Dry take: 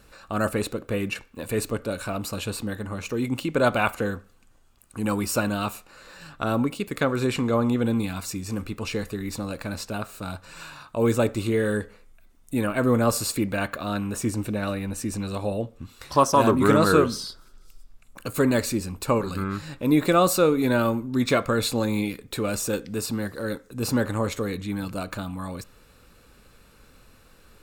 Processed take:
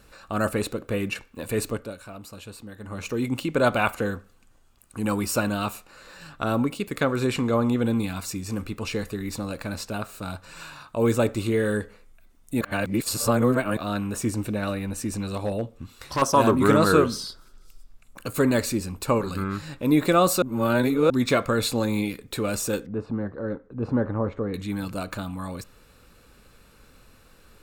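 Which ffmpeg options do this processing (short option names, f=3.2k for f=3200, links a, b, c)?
-filter_complex "[0:a]asettb=1/sr,asplit=3[a][b][c];[a]atrim=end=14.934[d];[b]atrim=start=14.93:end=16.22,asetpts=PTS-STARTPTS,afade=t=in:d=0.004:c=qsin,afade=t=out:st=1.286:d=0.004:c=qsin,asoftclip=type=hard:threshold=-20.5dB[e];[c]atrim=start=16.216[f];[d][e]acrossfade=d=0.004:c1=hsin:c2=qsin[g];[g][f]acrossfade=d=0.004:c1=qsin:c2=hsin,asettb=1/sr,asplit=3[h][i][j];[h]atrim=end=22.864[k];[i]atrim=start=22.86:end=24.54,asetpts=PTS-STARTPTS,afade=t=in:d=0.004:c=qsin,afade=t=out:st=1.676:d=0.004:c=qsin,lowpass=1.1k[l];[j]atrim=start=24.536[m];[k][l]acrossfade=d=0.004:c1=hsin:c2=qsin[n];[n][m]acrossfade=d=0.004:c1=qsin:c2=hsin,asplit=7[o][p][q][r][s][t][u];[o]atrim=end=1.96,asetpts=PTS-STARTPTS,afade=t=out:st=1.69:d=0.27:silence=0.281838[v];[p]atrim=start=1.96:end=2.76,asetpts=PTS-STARTPTS,volume=-11dB[w];[q]atrim=start=2.76:end=12.612,asetpts=PTS-STARTPTS,afade=t=in:d=0.27:silence=0.281838[x];[r]atrim=start=12.608:end=13.772,asetpts=PTS-STARTPTS,areverse[y];[s]atrim=start=13.768:end=20.422[z];[t]atrim=start=20.418:end=21.102,asetpts=PTS-STARTPTS,areverse[aa];[u]atrim=start=21.098[ab];[v][w][x]concat=n=3:v=0:a=1[ac];[ac][y]acrossfade=d=0.004:c1=hsin:c2=hsin[ad];[ad][z]acrossfade=d=0.004:c1=hsin:c2=hsin[ae];[ae][aa]acrossfade=d=0.004:c1=hsin:c2=hsin[af];[af][ab]acrossfade=d=0.004:c1=hsin:c2=hsin"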